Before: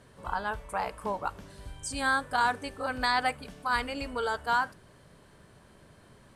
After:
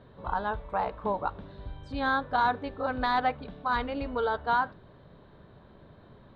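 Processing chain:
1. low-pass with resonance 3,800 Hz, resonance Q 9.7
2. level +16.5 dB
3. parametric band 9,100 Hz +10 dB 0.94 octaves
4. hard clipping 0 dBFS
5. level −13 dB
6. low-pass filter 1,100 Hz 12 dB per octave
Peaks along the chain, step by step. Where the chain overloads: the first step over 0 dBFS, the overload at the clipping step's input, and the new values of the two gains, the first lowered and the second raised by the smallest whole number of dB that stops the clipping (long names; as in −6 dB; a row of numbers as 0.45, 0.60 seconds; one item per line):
−10.0, +6.5, +8.0, 0.0, −13.0, −15.0 dBFS
step 2, 8.0 dB
step 2 +8.5 dB, step 5 −5 dB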